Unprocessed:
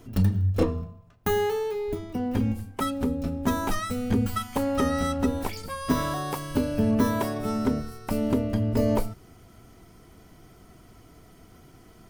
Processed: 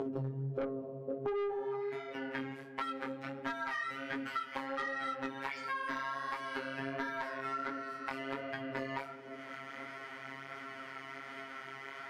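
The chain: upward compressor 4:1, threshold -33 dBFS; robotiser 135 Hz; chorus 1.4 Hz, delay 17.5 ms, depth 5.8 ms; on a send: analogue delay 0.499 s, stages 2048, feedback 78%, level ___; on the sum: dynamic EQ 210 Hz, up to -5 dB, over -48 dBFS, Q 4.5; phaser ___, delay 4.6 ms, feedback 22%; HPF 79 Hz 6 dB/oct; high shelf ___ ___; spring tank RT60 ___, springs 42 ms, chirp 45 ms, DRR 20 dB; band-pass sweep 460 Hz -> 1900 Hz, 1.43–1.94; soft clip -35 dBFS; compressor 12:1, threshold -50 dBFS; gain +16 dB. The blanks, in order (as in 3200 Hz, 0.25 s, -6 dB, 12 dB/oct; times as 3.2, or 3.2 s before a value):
-15.5 dB, 0.57 Hz, 4000 Hz, -8.5 dB, 1.3 s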